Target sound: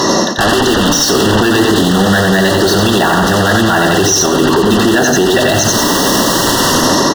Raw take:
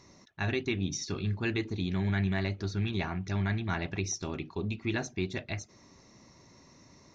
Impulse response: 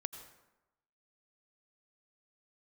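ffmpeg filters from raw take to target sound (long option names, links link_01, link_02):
-filter_complex "[0:a]asoftclip=type=hard:threshold=-28.5dB,areverse,acompressor=threshold=-47dB:ratio=5,areverse,highpass=270,dynaudnorm=framelen=400:gausssize=5:maxgain=15.5dB,asplit=2[link_01][link_02];[link_02]aeval=exprs='0.0211*sin(PI/2*10*val(0)/0.0211)':channel_layout=same,volume=-8dB[link_03];[link_01][link_03]amix=inputs=2:normalize=0,asuperstop=centerf=2300:order=12:qfactor=2.9,highshelf=frequency=5700:gain=-10.5,aecho=1:1:89|178|267|356:0.631|0.215|0.0729|0.0248,alimiter=level_in=35.5dB:limit=-1dB:release=50:level=0:latency=1,volume=-1dB"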